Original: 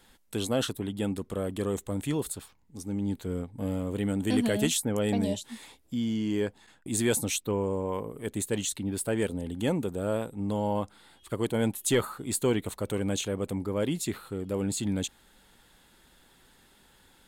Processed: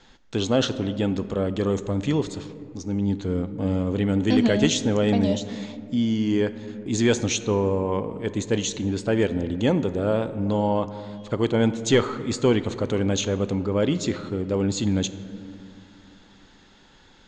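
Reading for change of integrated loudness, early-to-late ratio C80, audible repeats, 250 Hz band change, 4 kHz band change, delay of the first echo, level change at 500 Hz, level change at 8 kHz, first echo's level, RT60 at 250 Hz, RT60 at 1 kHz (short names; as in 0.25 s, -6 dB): +6.5 dB, 14.0 dB, none, +7.0 dB, +6.0 dB, none, +6.5 dB, +0.5 dB, none, 3.2 s, 2.1 s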